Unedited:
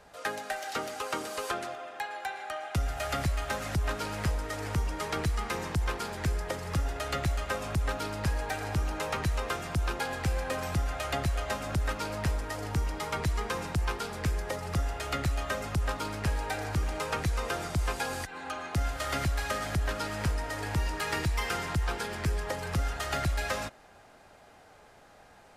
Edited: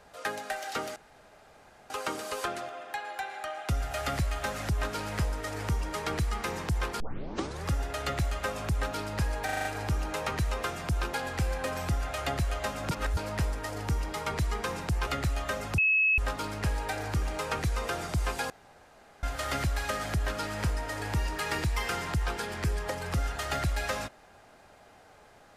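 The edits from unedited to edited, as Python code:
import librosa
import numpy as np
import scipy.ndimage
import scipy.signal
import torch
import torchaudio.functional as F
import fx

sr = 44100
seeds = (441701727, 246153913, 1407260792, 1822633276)

y = fx.edit(x, sr, fx.insert_room_tone(at_s=0.96, length_s=0.94),
    fx.tape_start(start_s=6.06, length_s=0.66),
    fx.stutter(start_s=8.51, slice_s=0.04, count=6),
    fx.reverse_span(start_s=11.77, length_s=0.26),
    fx.cut(start_s=13.93, length_s=1.15),
    fx.insert_tone(at_s=15.79, length_s=0.4, hz=2580.0, db=-21.0),
    fx.room_tone_fill(start_s=18.11, length_s=0.73), tone=tone)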